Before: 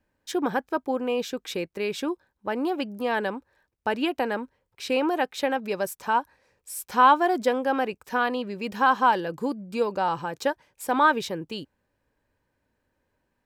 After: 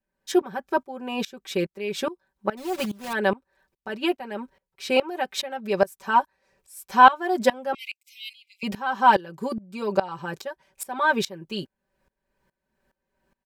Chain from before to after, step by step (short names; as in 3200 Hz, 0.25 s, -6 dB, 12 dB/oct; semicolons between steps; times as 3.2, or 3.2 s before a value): 2.57–3.15 block floating point 3-bit; 3.88–4.31 gate -28 dBFS, range -8 dB; 7.74–8.63 brick-wall FIR high-pass 2000 Hz; comb 5.2 ms, depth 93%; dB-ramp tremolo swelling 2.4 Hz, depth 21 dB; gain +5 dB